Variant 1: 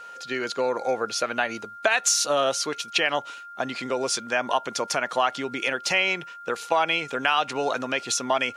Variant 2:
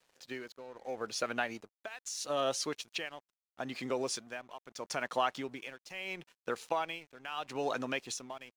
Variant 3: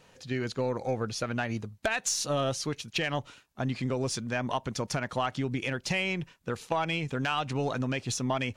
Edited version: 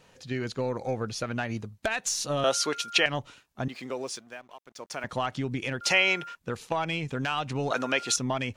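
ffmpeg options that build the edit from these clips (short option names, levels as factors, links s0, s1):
-filter_complex "[0:a]asplit=3[s0][s1][s2];[2:a]asplit=5[s3][s4][s5][s6][s7];[s3]atrim=end=2.442[s8];[s0]atrim=start=2.438:end=3.062[s9];[s4]atrim=start=3.058:end=3.682[s10];[1:a]atrim=start=3.678:end=5.042[s11];[s5]atrim=start=5.038:end=5.812[s12];[s1]atrim=start=5.808:end=6.352[s13];[s6]atrim=start=6.348:end=7.712[s14];[s2]atrim=start=7.708:end=8.162[s15];[s7]atrim=start=8.158[s16];[s8][s9]acrossfade=d=0.004:c1=hsin:c2=hsin[s17];[s17][s10]acrossfade=d=0.004:c1=hsin:c2=hsin[s18];[s18][s11]acrossfade=d=0.004:c1=hsin:c2=hsin[s19];[s19][s12]acrossfade=d=0.004:c1=hsin:c2=hsin[s20];[s20][s13]acrossfade=d=0.004:c1=hsin:c2=hsin[s21];[s21][s14]acrossfade=d=0.004:c1=hsin:c2=hsin[s22];[s22][s15]acrossfade=d=0.004:c1=hsin:c2=hsin[s23];[s23][s16]acrossfade=d=0.004:c1=hsin:c2=hsin"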